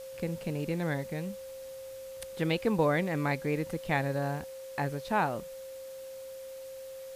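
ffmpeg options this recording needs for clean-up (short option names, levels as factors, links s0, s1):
-af "bandreject=f=530:w=30,afwtdn=0.002"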